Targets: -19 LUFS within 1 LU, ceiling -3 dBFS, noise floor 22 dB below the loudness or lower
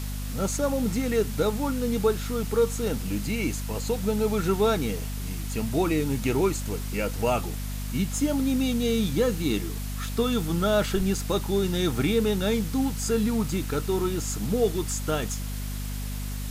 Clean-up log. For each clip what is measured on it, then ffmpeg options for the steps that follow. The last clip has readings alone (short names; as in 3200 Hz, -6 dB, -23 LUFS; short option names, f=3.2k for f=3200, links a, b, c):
hum 50 Hz; harmonics up to 250 Hz; hum level -30 dBFS; noise floor -32 dBFS; noise floor target -49 dBFS; loudness -26.5 LUFS; peak -11.5 dBFS; loudness target -19.0 LUFS
-> -af "bandreject=f=50:t=h:w=6,bandreject=f=100:t=h:w=6,bandreject=f=150:t=h:w=6,bandreject=f=200:t=h:w=6,bandreject=f=250:t=h:w=6"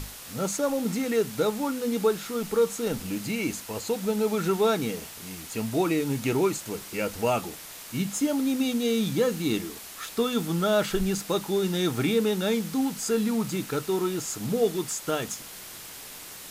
hum none; noise floor -43 dBFS; noise floor target -50 dBFS
-> -af "afftdn=nr=7:nf=-43"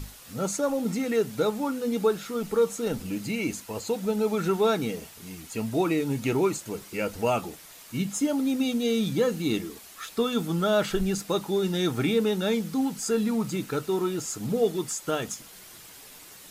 noise floor -48 dBFS; noise floor target -50 dBFS
-> -af "afftdn=nr=6:nf=-48"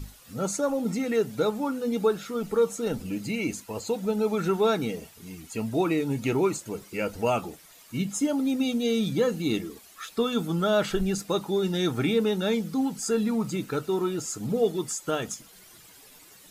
noise floor -52 dBFS; loudness -27.5 LUFS; peak -12.5 dBFS; loudness target -19.0 LUFS
-> -af "volume=8.5dB"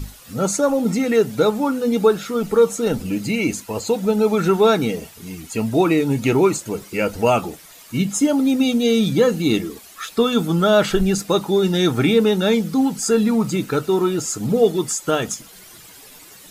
loudness -19.0 LUFS; peak -4.0 dBFS; noise floor -44 dBFS